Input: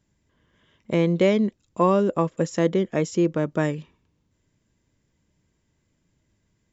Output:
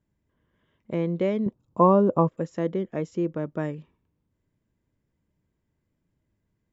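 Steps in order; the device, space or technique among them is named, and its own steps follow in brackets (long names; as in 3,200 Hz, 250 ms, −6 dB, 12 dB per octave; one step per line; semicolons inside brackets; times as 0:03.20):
0:01.46–0:02.29: octave-band graphic EQ 125/250/500/1,000/2,000 Hz +11/+4/+4/+11/−8 dB
through cloth (high-shelf EQ 3,200 Hz −15 dB)
level −5.5 dB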